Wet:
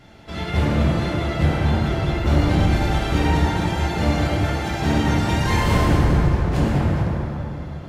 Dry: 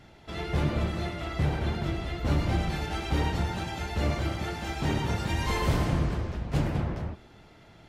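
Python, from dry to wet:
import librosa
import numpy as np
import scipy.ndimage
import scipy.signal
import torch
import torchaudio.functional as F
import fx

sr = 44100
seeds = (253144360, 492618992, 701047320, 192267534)

y = fx.rev_plate(x, sr, seeds[0], rt60_s=3.3, hf_ratio=0.5, predelay_ms=0, drr_db=-4.0)
y = y * librosa.db_to_amplitude(3.5)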